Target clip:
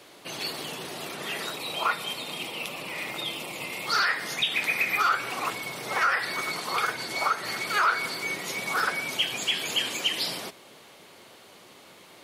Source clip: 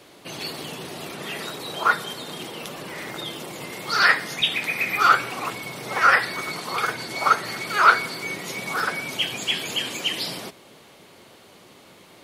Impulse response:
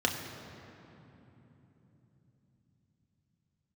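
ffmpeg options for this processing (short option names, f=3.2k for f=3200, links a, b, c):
-filter_complex "[0:a]asettb=1/sr,asplit=3[a][b][c];[a]atrim=end=1.564[d];[b]atrim=start=1.56:end=3.87,asetpts=PTS-STARTPTS,afade=t=in:d=0.004:c=qsin,afade=t=out:st=2.306:d=0.004:c=qsin,equalizer=f=400:t=o:w=0.33:g=-4,equalizer=f=1.6k:t=o:w=0.33:g=-9,equalizer=f=2.5k:t=o:w=0.33:g=10,equalizer=f=6.3k:t=o:w=0.33:g=-4[e];[c]atrim=start=3.866[f];[d][e]acrossfade=d=0.004:c1=hsin:c2=qsin[g];[g][f]acrossfade=d=0.004:c1=qsin:c2=hsin,alimiter=limit=-14dB:level=0:latency=1:release=155,lowshelf=f=330:g=-7"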